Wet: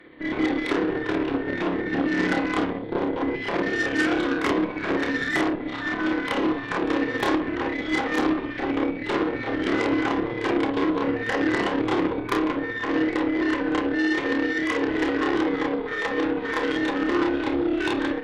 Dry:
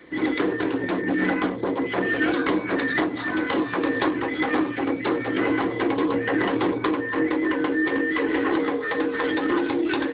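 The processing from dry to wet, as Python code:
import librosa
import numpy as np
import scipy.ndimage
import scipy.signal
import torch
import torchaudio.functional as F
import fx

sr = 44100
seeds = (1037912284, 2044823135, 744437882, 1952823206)

y = fx.cheby_harmonics(x, sr, harmonics=(6, 8), levels_db=(-16, -15), full_scale_db=-9.0)
y = fx.stretch_grains(y, sr, factor=1.8, grain_ms=129.0)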